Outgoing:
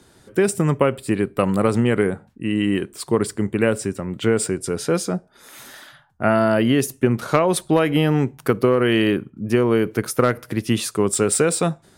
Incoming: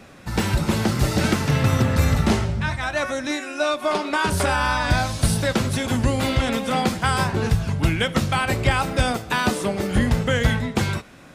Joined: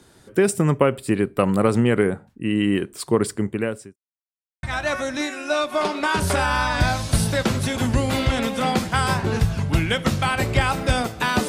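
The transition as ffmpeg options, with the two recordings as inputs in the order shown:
ffmpeg -i cue0.wav -i cue1.wav -filter_complex "[0:a]apad=whole_dur=11.48,atrim=end=11.48,asplit=2[link_01][link_02];[link_01]atrim=end=3.96,asetpts=PTS-STARTPTS,afade=type=out:start_time=3.33:duration=0.63[link_03];[link_02]atrim=start=3.96:end=4.63,asetpts=PTS-STARTPTS,volume=0[link_04];[1:a]atrim=start=2.73:end=9.58,asetpts=PTS-STARTPTS,afade=type=in:duration=0.004:curve=hsin[link_05];[link_03][link_04][link_05]concat=n=3:v=0:a=1" out.wav

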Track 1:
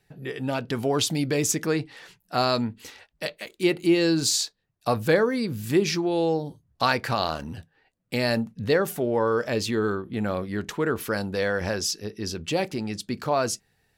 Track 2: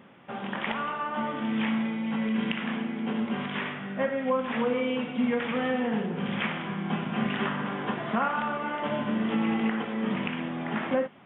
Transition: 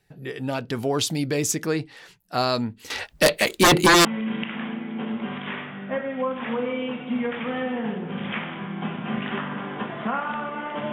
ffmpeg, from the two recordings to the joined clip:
ffmpeg -i cue0.wav -i cue1.wav -filter_complex "[0:a]asettb=1/sr,asplit=3[link_01][link_02][link_03];[link_01]atrim=end=2.904[link_04];[link_02]atrim=start=2.9:end=4.05,asetpts=PTS-STARTPTS,afade=type=in:duration=0.004:curve=qsin,afade=type=out:start_time=1.146:duration=0.004:curve=qsin,aeval=exprs='0.299*sin(PI/2*5.01*val(0)/0.299)':channel_layout=same[link_05];[link_03]atrim=start=4.046[link_06];[link_04][link_05]acrossfade=duration=0.004:curve1=hsin:curve2=qsin[link_07];[link_07][link_06]acrossfade=duration=0.004:curve1=qsin:curve2=hsin,apad=whole_dur=10.92,atrim=end=10.92,atrim=end=4.052[link_08];[1:a]atrim=start=2.128:end=9[link_09];[link_08][link_09]acrossfade=duration=0.004:curve1=hsin:curve2=hsin" out.wav

